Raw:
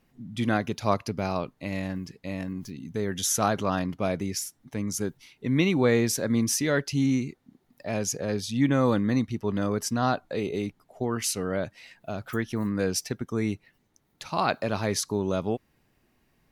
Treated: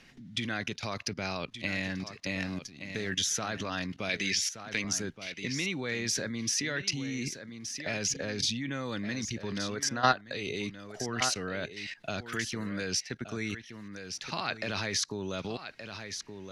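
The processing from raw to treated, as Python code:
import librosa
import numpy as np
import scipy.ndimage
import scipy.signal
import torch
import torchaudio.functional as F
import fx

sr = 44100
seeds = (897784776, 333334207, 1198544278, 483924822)

p1 = fx.law_mismatch(x, sr, coded='A', at=(2.46, 3.09))
p2 = fx.weighting(p1, sr, curve='D', at=(4.09, 4.84))
p3 = fx.spec_box(p2, sr, start_s=9.76, length_s=0.48, low_hz=310.0, high_hz=2100.0, gain_db=7)
p4 = fx.level_steps(p3, sr, step_db=18)
p5 = scipy.signal.sosfilt(scipy.signal.butter(4, 11000.0, 'lowpass', fs=sr, output='sos'), p4)
p6 = fx.band_shelf(p5, sr, hz=3100.0, db=10.5, octaves=2.4)
p7 = p6 + fx.echo_single(p6, sr, ms=1172, db=-12.5, dry=0)
y = fx.band_squash(p7, sr, depth_pct=40)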